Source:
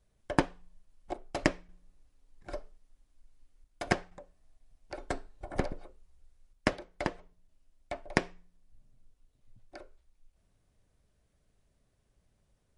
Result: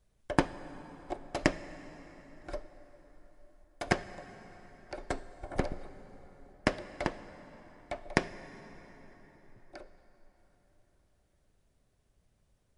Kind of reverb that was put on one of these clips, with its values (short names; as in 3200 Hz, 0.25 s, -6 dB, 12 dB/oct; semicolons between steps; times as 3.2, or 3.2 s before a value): plate-style reverb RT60 4.8 s, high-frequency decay 0.65×, DRR 13 dB